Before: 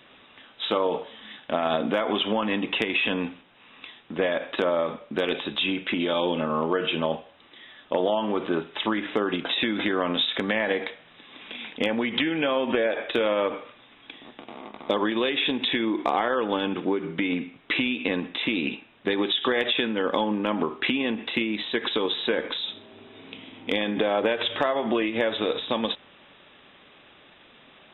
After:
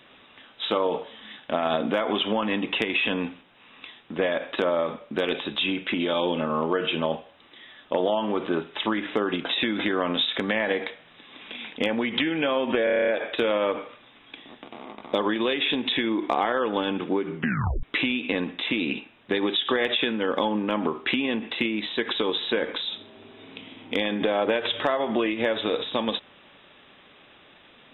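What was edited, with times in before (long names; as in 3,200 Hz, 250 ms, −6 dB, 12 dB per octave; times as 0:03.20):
0:12.84: stutter 0.03 s, 9 plays
0:17.13: tape stop 0.46 s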